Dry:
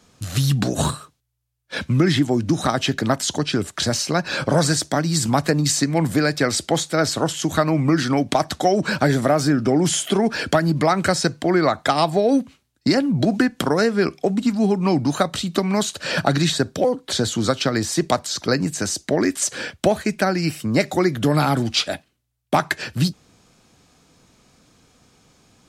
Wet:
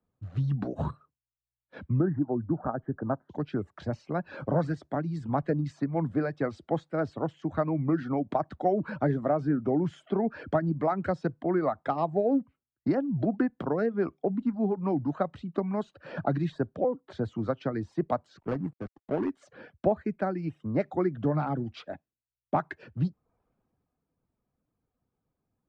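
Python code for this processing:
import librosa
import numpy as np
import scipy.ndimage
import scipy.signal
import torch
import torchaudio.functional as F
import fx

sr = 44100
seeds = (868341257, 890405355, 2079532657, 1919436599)

y = fx.ellip_lowpass(x, sr, hz=1600.0, order=4, stop_db=40, at=(1.99, 3.29), fade=0.02)
y = fx.dead_time(y, sr, dead_ms=0.29, at=(18.37, 19.3))
y = fx.dereverb_blind(y, sr, rt60_s=0.56)
y = scipy.signal.sosfilt(scipy.signal.butter(2, 1100.0, 'lowpass', fs=sr, output='sos'), y)
y = fx.band_widen(y, sr, depth_pct=40)
y = y * 10.0 ** (-8.0 / 20.0)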